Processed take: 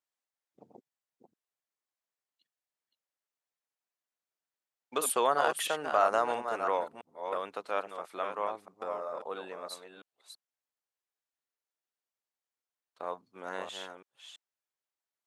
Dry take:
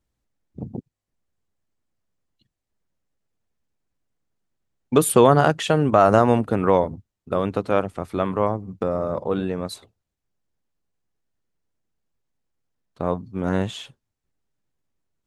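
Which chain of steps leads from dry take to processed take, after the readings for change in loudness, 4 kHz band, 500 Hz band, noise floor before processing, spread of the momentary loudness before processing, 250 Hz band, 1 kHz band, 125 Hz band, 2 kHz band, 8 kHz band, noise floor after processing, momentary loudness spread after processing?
−12.0 dB, −6.5 dB, −13.0 dB, −83 dBFS, 19 LU, −24.0 dB, −8.5 dB, −34.5 dB, −7.0 dB, −6.5 dB, below −85 dBFS, 16 LU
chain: delay that plays each chunk backwards 334 ms, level −7 dB
high-pass filter 720 Hz 12 dB per octave
level −7.5 dB

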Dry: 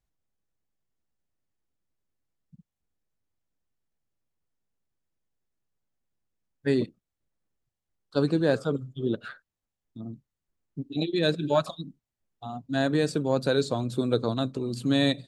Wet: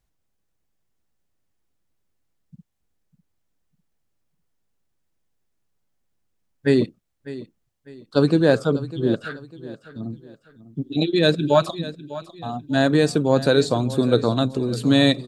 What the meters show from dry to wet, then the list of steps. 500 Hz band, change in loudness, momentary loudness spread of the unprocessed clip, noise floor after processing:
+7.0 dB, +7.0 dB, 17 LU, −73 dBFS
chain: repeating echo 600 ms, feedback 35%, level −16 dB
level +7 dB

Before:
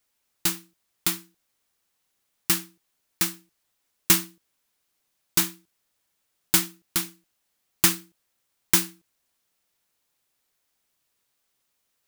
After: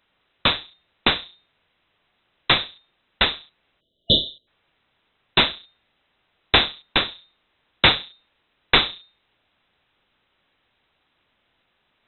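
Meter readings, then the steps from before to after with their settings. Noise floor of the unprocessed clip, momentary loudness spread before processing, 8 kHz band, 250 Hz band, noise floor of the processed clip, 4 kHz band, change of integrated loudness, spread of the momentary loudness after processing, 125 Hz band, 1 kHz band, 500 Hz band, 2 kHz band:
−76 dBFS, 15 LU, below −40 dB, +2.0 dB, −71 dBFS, +12.0 dB, +3.5 dB, 12 LU, +5.0 dB, +11.5 dB, +12.5 dB, +10.5 dB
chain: sub-harmonics by changed cycles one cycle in 2, inverted
mains-hum notches 60/120/180/240 Hz
in parallel at −11 dB: sine wavefolder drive 11 dB, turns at −1.5 dBFS
on the sum: voice inversion scrambler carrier 3,900 Hz
time-frequency box erased 0:03.80–0:04.47, 680–2,900 Hz
level +5 dB

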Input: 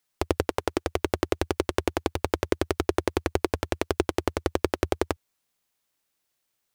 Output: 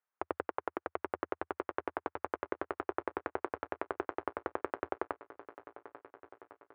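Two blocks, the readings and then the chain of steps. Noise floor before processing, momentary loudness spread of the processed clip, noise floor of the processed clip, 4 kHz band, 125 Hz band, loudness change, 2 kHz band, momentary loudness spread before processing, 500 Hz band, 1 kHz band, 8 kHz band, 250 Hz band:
−78 dBFS, 15 LU, below −85 dBFS, −25.0 dB, −25.0 dB, −11.0 dB, −8.5 dB, 3 LU, −11.5 dB, −6.0 dB, below −40 dB, −14.5 dB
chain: low-pass filter 1,400 Hz 24 dB per octave
first difference
feedback echo with a long and a short gap by turns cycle 1,402 ms, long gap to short 1.5 to 1, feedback 43%, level −16 dB
level +12 dB

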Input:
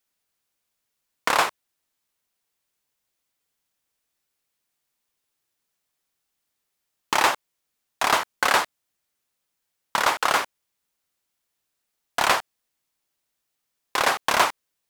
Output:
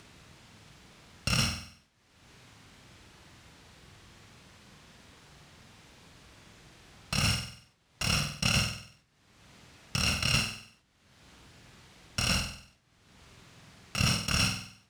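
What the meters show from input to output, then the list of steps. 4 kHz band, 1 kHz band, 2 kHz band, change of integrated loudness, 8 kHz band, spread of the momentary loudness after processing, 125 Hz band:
−1.5 dB, −17.5 dB, −8.5 dB, −6.5 dB, −3.0 dB, 12 LU, +17.0 dB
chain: samples in bit-reversed order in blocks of 128 samples
high-pass filter 52 Hz
bass and treble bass +14 dB, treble −3 dB
brickwall limiter −10 dBFS, peak gain reduction 3.5 dB
upward compression, threshold −30 dBFS
high-frequency loss of the air 84 metres
flutter between parallel walls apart 8.2 metres, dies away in 0.48 s
level that may fall only so fast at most 98 dB per second

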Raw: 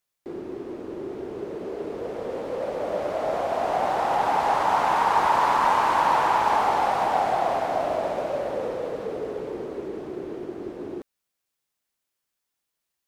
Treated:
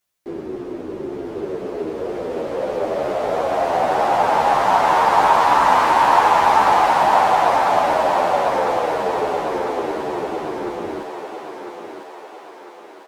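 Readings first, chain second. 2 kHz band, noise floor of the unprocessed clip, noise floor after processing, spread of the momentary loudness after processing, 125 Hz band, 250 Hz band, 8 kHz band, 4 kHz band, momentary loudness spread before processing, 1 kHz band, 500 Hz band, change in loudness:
+7.5 dB, −82 dBFS, −40 dBFS, 17 LU, +5.5 dB, +6.5 dB, +8.0 dB, +7.5 dB, 15 LU, +7.0 dB, +7.0 dB, +7.0 dB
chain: feedback echo with a high-pass in the loop 1,001 ms, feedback 60%, high-pass 450 Hz, level −3.5 dB
barber-pole flanger 10.6 ms −2 Hz
level +8.5 dB

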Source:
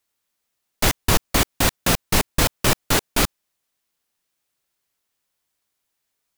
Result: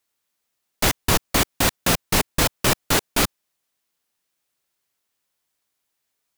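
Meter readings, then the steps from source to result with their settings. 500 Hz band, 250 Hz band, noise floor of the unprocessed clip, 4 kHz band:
0.0 dB, −0.5 dB, −78 dBFS, 0.0 dB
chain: low-shelf EQ 76 Hz −5.5 dB

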